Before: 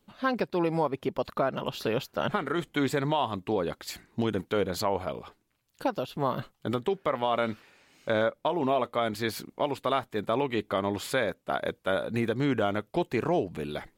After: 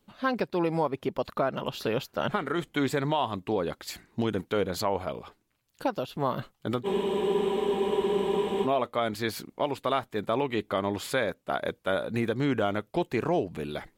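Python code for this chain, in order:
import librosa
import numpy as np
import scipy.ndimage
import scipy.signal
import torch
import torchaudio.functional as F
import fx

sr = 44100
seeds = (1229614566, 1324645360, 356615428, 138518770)

y = fx.spec_freeze(x, sr, seeds[0], at_s=6.87, hold_s=1.78)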